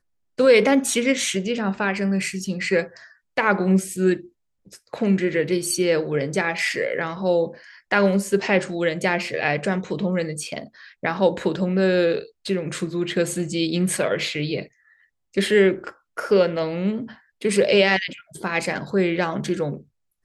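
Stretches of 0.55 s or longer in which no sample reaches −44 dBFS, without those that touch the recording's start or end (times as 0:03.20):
0:14.67–0:15.34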